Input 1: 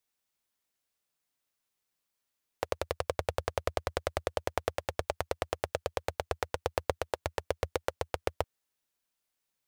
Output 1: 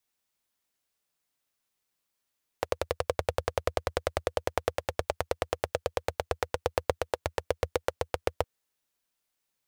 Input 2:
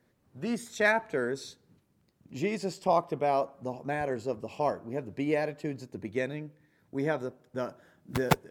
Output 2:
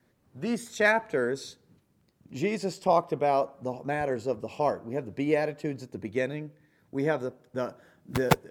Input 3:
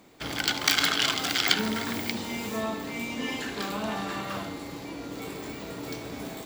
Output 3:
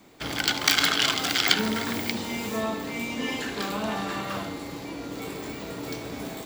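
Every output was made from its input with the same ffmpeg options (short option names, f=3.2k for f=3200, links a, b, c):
-af "adynamicequalizer=threshold=0.00708:dfrequency=490:dqfactor=6.8:tfrequency=490:tqfactor=6.8:attack=5:release=100:ratio=0.375:range=1.5:mode=boostabove:tftype=bell,volume=2dB"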